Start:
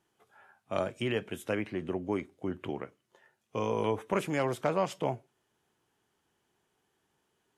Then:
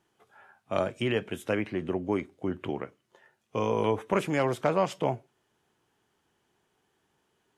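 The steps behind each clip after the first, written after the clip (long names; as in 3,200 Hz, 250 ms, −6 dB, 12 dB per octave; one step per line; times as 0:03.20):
high-shelf EQ 8,300 Hz −5.5 dB
level +3.5 dB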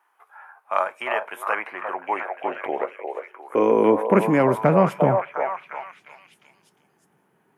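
flat-topped bell 4,900 Hz −12 dB
echo through a band-pass that steps 353 ms, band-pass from 710 Hz, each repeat 0.7 octaves, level −2 dB
high-pass filter sweep 980 Hz → 160 Hz, 0:01.90–0:04.66
level +6.5 dB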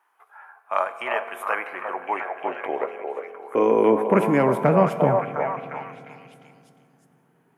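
convolution reverb RT60 2.5 s, pre-delay 3 ms, DRR 11 dB
level −1 dB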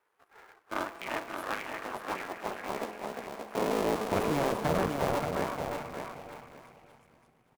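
sub-harmonics by changed cycles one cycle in 2, muted
soft clipping −13.5 dBFS, distortion −14 dB
on a send: repeating echo 577 ms, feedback 22%, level −6 dB
on the sum: level −6 dB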